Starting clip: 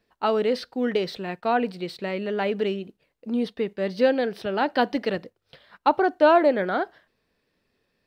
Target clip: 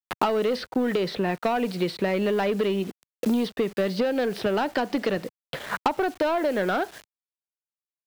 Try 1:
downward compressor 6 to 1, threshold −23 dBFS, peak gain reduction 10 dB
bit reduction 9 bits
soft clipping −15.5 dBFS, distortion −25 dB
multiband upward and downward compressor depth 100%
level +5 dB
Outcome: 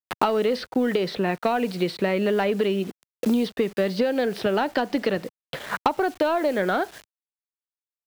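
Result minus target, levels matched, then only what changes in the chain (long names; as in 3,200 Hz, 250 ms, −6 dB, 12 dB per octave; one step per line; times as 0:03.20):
soft clipping: distortion −10 dB
change: soft clipping −22.5 dBFS, distortion −15 dB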